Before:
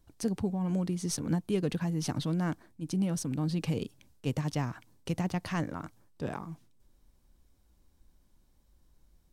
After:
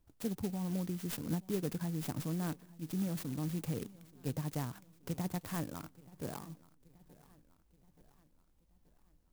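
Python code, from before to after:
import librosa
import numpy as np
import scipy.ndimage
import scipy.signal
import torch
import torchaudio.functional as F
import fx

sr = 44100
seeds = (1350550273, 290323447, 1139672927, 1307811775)

y = fx.echo_feedback(x, sr, ms=878, feedback_pct=52, wet_db=-21.5)
y = fx.clock_jitter(y, sr, seeds[0], jitter_ms=0.092)
y = y * librosa.db_to_amplitude(-6.0)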